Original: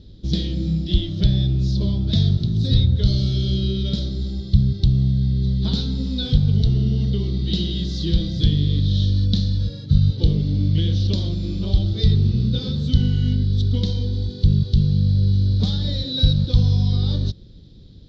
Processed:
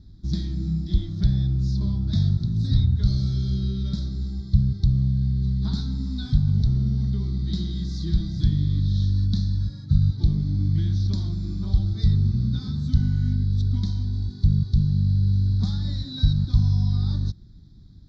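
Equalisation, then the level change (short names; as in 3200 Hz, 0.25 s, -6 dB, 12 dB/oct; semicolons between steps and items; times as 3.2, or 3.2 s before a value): fixed phaser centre 1200 Hz, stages 4; -2.5 dB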